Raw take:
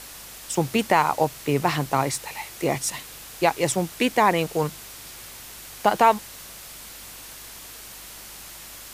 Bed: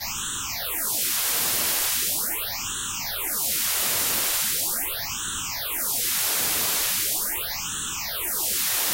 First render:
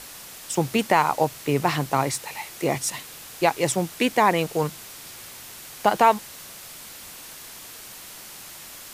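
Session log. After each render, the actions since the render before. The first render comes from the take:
hum removal 50 Hz, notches 2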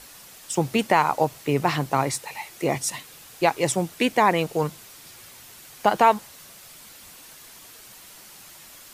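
broadband denoise 6 dB, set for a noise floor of −42 dBFS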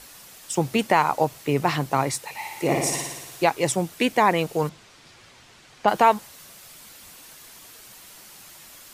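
0:02.33–0:03.44: flutter between parallel walls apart 9.9 metres, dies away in 1.1 s
0:04.69–0:05.88: high-frequency loss of the air 100 metres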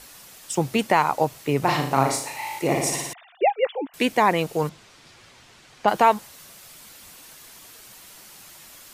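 0:01.59–0:02.59: flutter between parallel walls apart 6.4 metres, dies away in 0.52 s
0:03.13–0:03.94: three sine waves on the formant tracks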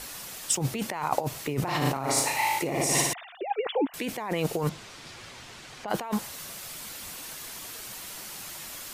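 compressor whose output falls as the input rises −28 dBFS, ratio −1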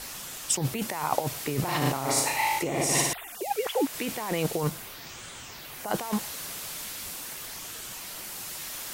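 mix in bed −16.5 dB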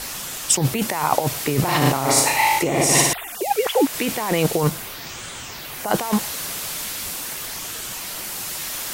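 level +8.5 dB
brickwall limiter −2 dBFS, peak gain reduction 2 dB

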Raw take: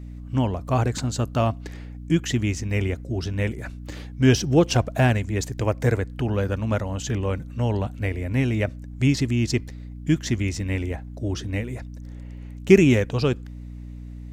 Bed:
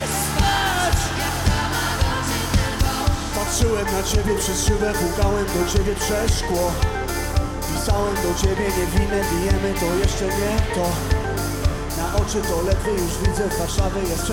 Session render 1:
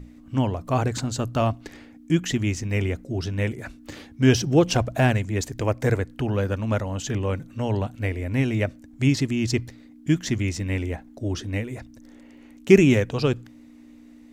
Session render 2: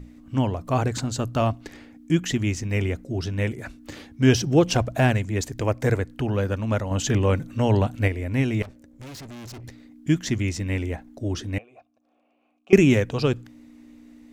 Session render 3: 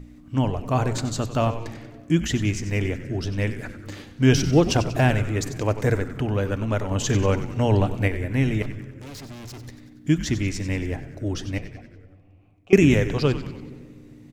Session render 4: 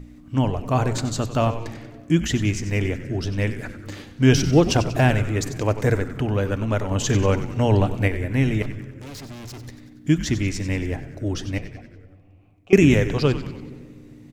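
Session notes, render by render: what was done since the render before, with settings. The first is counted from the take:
mains-hum notches 60/120/180 Hz
0:06.91–0:08.08: clip gain +5 dB; 0:08.62–0:09.64: tube saturation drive 38 dB, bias 0.75; 0:11.58–0:12.73: formant filter a
echo with shifted repeats 94 ms, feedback 56%, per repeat −110 Hz, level −12 dB; rectangular room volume 3,200 cubic metres, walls mixed, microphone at 0.38 metres
level +1.5 dB; brickwall limiter −1 dBFS, peak gain reduction 1 dB

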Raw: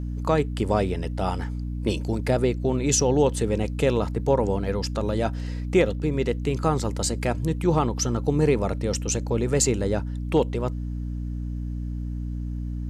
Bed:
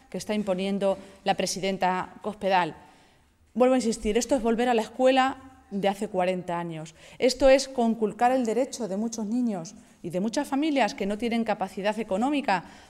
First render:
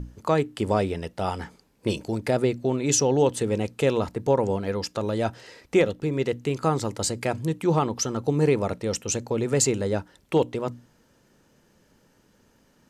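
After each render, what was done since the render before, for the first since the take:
mains-hum notches 60/120/180/240/300 Hz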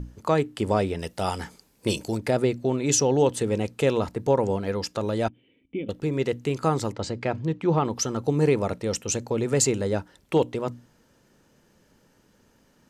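0:00.99–0:02.17: high-shelf EQ 4,300 Hz +10.5 dB
0:05.28–0:05.89: formant resonators in series i
0:06.92–0:07.85: high-frequency loss of the air 160 metres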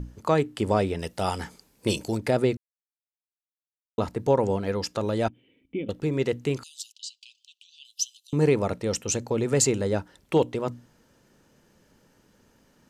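0:02.57–0:03.98: silence
0:06.63–0:08.33: Butterworth high-pass 2,800 Hz 96 dB per octave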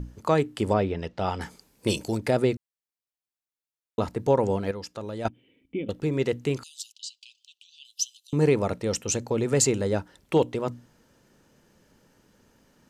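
0:00.73–0:01.41: high-frequency loss of the air 180 metres
0:04.71–0:05.25: clip gain −8 dB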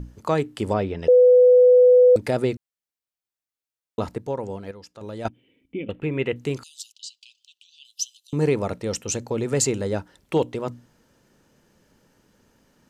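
0:01.08–0:02.16: beep over 498 Hz −9.5 dBFS
0:04.18–0:05.01: clip gain −7 dB
0:05.80–0:06.36: high shelf with overshoot 3,700 Hz −11.5 dB, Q 3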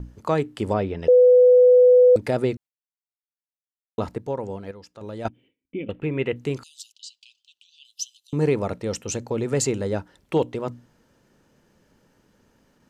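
high-shelf EQ 4,000 Hz −4.5 dB
noise gate with hold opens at −53 dBFS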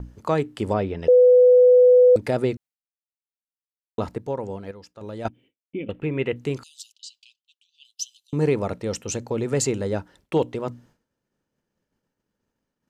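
downward expander −49 dBFS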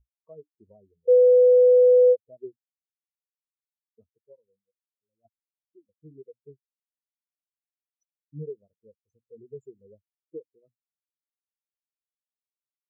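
downward compressor 8 to 1, threshold −20 dBFS, peak gain reduction 8.5 dB
every bin expanded away from the loudest bin 4 to 1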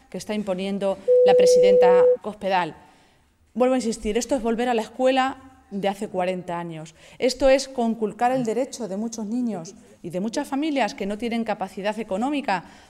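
mix in bed +1 dB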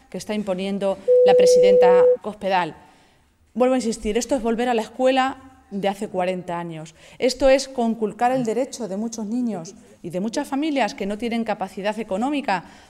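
level +1.5 dB

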